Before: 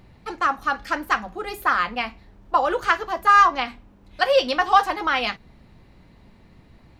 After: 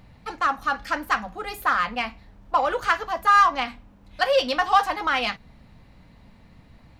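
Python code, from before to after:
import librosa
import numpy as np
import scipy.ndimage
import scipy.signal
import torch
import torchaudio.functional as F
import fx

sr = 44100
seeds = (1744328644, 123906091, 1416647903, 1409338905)

p1 = 10.0 ** (-20.5 / 20.0) * np.tanh(x / 10.0 ** (-20.5 / 20.0))
p2 = x + (p1 * librosa.db_to_amplitude(-5.0))
p3 = fx.peak_eq(p2, sr, hz=370.0, db=-11.5, octaves=0.27)
y = p3 * librosa.db_to_amplitude(-3.5)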